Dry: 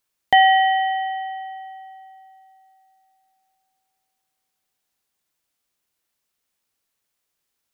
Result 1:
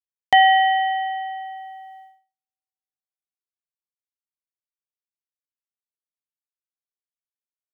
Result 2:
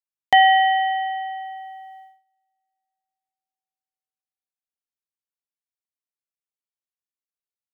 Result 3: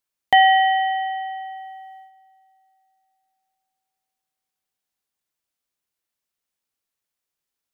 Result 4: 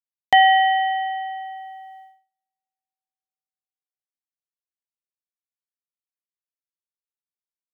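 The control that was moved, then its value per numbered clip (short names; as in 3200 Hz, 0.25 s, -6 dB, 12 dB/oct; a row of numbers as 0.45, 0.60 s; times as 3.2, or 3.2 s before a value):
gate, range: -50, -24, -7, -37 dB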